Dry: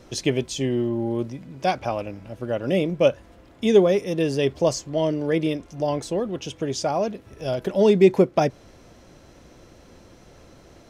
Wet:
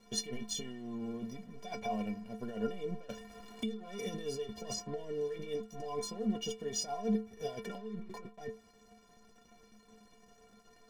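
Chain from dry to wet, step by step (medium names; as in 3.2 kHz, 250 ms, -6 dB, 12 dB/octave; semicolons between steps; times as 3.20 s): comb of notches 1.3 kHz; compressor with a negative ratio -29 dBFS, ratio -1; de-hum 340.8 Hz, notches 14; crossover distortion -45 dBFS; bass shelf 110 Hz +11 dB; inharmonic resonator 210 Hz, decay 0.32 s, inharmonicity 0.03; 3.09–5.36 s: three bands compressed up and down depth 70%; trim +3.5 dB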